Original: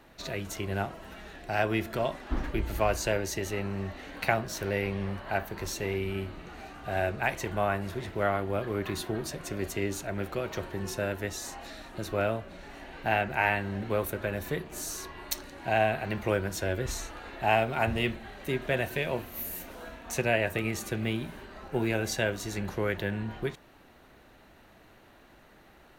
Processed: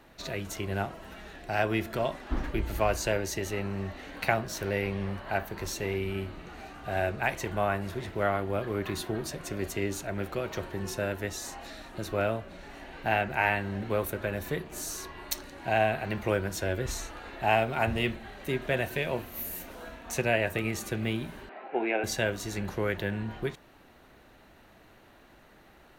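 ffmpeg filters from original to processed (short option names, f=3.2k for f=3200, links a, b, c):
-filter_complex "[0:a]asettb=1/sr,asplit=3[a][b][c];[a]atrim=end=21.494[d];[b]atrim=start=21.49:end=22.04,asetpts=PTS-STARTPTS,afade=t=in:d=0.004:c=qsin,afade=t=out:st=0.546:d=0.004:c=qsin,highpass=f=280:w=0.5412,highpass=f=280:w=1.3066,equalizer=f=740:t=q:w=4:g=9,equalizer=f=1.2k:t=q:w=4:g=-3,equalizer=f=2.3k:t=q:w=4:g=6,lowpass=f=2.9k:w=0.5412,lowpass=f=2.9k:w=1.3066[e];[c]atrim=start=22.036[f];[d][e]acrossfade=d=0.004:c1=hsin:c2=qsin[g];[g][f]acrossfade=d=0.004:c1=qsin:c2=hsin"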